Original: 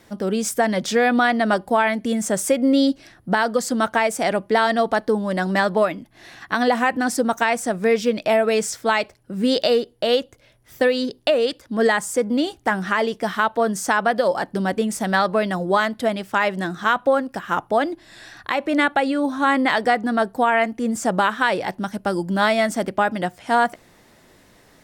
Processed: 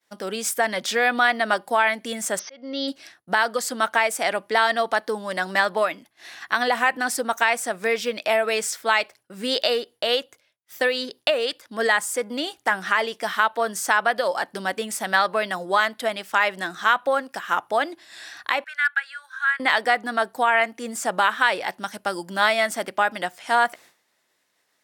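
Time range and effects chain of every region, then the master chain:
2.39–2.88 s: slow attack 467 ms + brick-wall FIR low-pass 6.3 kHz + band-stop 2.5 kHz, Q 14
18.64–19.60 s: ladder high-pass 1.5 kHz, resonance 85% + hard clipper -14.5 dBFS
whole clip: high-pass 1.4 kHz 6 dB/octave; expander -46 dBFS; dynamic bell 6.3 kHz, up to -5 dB, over -42 dBFS, Q 1.1; trim +4 dB

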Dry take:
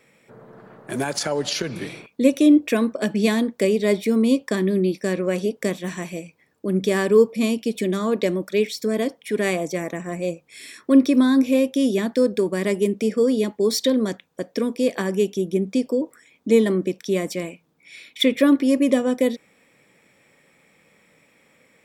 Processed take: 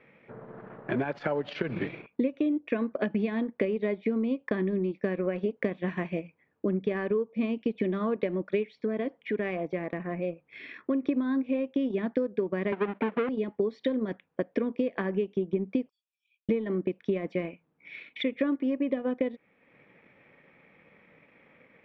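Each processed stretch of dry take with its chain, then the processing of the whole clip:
8.75–11.05 s: low-pass 6 kHz + compression 1.5:1, threshold -36 dBFS
12.72–13.29 s: square wave that keeps the level + high-pass 220 Hz + distance through air 290 m
15.89–16.49 s: brick-wall FIR high-pass 2.3 kHz + differentiator
whole clip: compression 12:1, threshold -25 dBFS; low-pass 2.7 kHz 24 dB/octave; transient shaper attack +2 dB, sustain -7 dB

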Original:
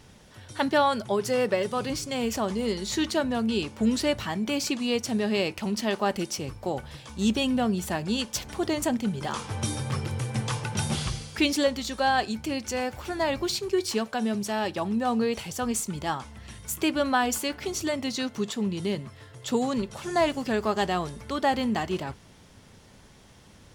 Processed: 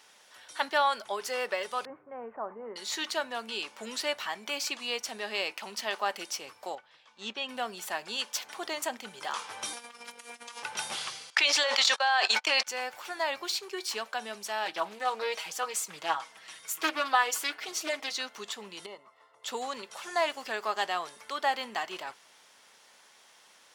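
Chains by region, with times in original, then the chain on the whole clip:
1.85–2.76 s: Bessel low-pass 930 Hz, order 8 + tape noise reduction on one side only decoder only
6.75–7.49 s: low-pass 4 kHz + upward expansion, over -42 dBFS
9.73–10.63 s: compressor with a negative ratio -33 dBFS, ratio -0.5 + robot voice 237 Hz
11.30–12.67 s: gate -34 dBFS, range -50 dB + three-band isolator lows -23 dB, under 490 Hz, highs -19 dB, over 7.7 kHz + level flattener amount 100%
14.65–18.17 s: comb 6.3 ms, depth 77% + loudspeaker Doppler distortion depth 0.33 ms
18.86–19.44 s: Savitzky-Golay filter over 65 samples + tilt EQ +3.5 dB/octave
whole clip: high-pass 830 Hz 12 dB/octave; dynamic bell 8.7 kHz, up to -4 dB, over -48 dBFS, Q 0.71

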